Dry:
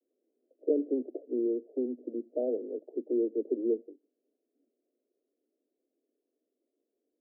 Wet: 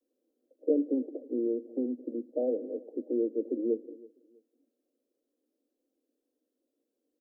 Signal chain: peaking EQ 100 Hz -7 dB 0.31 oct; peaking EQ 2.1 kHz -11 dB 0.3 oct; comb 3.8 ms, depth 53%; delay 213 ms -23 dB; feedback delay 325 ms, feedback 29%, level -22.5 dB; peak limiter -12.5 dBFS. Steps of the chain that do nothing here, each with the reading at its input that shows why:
peaking EQ 100 Hz: input has nothing below 210 Hz; peaking EQ 2.1 kHz: input has nothing above 680 Hz; peak limiter -12.5 dBFS: peak at its input -14.5 dBFS

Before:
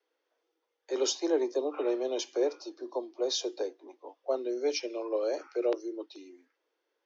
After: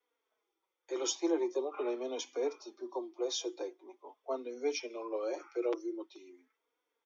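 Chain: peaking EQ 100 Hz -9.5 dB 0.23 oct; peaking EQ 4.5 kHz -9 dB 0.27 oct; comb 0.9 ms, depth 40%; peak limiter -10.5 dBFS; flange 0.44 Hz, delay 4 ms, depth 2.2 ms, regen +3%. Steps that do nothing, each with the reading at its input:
peaking EQ 100 Hz: input has nothing below 230 Hz; peak limiter -10.5 dBFS: peak at its input -17.0 dBFS

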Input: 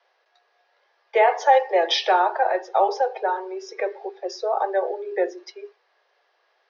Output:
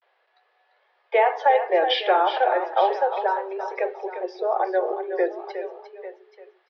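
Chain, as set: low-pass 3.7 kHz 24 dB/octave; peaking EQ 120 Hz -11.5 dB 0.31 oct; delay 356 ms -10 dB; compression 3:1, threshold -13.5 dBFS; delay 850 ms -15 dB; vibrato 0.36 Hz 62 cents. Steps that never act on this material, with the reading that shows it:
peaking EQ 120 Hz: input has nothing below 320 Hz

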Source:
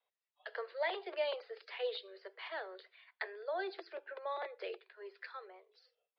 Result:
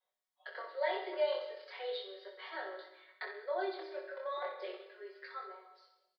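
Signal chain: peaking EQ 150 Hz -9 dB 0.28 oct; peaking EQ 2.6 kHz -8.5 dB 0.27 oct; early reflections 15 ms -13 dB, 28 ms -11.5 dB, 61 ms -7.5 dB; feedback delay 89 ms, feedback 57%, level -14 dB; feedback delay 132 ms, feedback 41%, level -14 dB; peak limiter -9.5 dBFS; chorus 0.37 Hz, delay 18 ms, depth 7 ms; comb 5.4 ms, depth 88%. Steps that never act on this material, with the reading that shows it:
peaking EQ 150 Hz: input has nothing below 300 Hz; peak limiter -9.5 dBFS: peak at its input -22.5 dBFS

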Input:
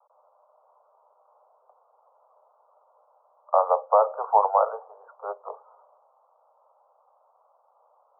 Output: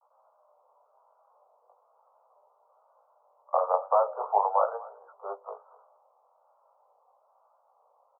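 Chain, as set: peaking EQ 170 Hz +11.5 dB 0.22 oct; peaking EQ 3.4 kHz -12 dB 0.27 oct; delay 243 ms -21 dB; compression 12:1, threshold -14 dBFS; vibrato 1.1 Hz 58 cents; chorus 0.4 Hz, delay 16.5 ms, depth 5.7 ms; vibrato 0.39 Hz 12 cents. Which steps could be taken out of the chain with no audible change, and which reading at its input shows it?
peaking EQ 170 Hz: input has nothing below 380 Hz; peaking EQ 3.4 kHz: input has nothing above 1.4 kHz

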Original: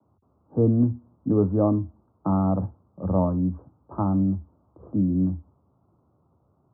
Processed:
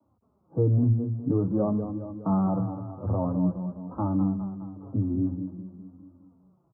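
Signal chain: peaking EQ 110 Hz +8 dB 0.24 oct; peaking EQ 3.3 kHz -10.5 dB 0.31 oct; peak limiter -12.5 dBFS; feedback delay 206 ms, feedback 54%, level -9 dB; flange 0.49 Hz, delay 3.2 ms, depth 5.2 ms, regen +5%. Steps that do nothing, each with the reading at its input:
peaking EQ 3.3 kHz: input has nothing above 1.3 kHz

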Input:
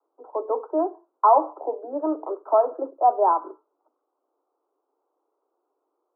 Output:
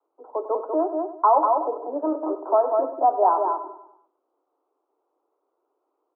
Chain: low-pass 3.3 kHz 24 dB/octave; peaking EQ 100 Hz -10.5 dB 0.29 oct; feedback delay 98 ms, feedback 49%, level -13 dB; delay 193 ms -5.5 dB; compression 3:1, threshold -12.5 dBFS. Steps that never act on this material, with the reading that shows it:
low-pass 3.3 kHz: input has nothing above 1.4 kHz; peaking EQ 100 Hz: input has nothing below 240 Hz

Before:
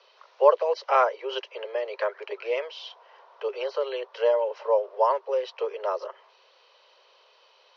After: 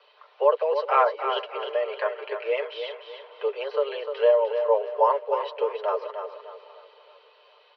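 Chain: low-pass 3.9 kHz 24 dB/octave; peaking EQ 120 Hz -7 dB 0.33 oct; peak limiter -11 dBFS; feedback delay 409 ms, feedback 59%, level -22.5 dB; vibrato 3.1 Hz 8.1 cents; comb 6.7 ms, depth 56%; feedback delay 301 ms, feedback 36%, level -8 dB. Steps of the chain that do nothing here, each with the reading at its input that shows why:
peaking EQ 120 Hz: input has nothing below 340 Hz

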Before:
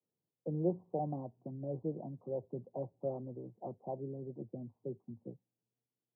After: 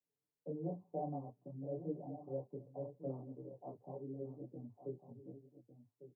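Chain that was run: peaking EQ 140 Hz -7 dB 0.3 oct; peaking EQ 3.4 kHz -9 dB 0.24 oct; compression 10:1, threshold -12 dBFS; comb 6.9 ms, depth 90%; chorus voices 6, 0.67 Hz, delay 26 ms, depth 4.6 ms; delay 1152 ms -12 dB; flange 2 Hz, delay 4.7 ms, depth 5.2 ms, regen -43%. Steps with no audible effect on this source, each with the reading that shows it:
peaking EQ 3.4 kHz: input has nothing above 960 Hz; compression, threshold -12 dBFS: peak at its input -21.5 dBFS

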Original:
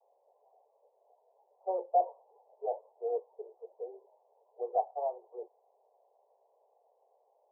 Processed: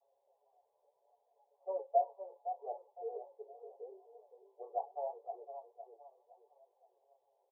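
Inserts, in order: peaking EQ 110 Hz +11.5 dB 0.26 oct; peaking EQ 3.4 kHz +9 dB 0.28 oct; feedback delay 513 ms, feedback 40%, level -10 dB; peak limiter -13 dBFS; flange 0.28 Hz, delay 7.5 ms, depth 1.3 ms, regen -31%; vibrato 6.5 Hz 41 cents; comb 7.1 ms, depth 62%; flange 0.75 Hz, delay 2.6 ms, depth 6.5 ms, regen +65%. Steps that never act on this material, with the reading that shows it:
peaking EQ 110 Hz: input has nothing below 340 Hz; peaking EQ 3.4 kHz: input has nothing above 960 Hz; peak limiter -13 dBFS: peak at its input -16.5 dBFS

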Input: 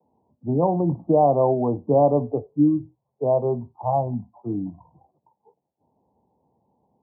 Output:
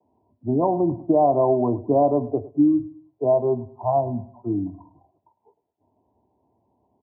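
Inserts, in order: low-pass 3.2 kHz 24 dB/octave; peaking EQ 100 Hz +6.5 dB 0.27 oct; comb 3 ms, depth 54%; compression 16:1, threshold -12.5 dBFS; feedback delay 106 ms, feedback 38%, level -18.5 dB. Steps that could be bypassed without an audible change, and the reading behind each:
low-pass 3.2 kHz: input has nothing above 1.1 kHz

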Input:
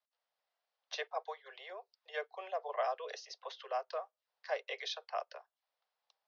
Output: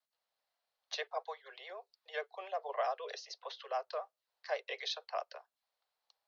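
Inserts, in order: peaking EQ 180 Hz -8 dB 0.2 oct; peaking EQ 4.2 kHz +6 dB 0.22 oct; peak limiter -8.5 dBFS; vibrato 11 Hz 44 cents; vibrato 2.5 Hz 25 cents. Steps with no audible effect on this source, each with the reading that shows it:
peaking EQ 180 Hz: input has nothing below 360 Hz; peak limiter -8.5 dBFS: peak at its input -21.5 dBFS

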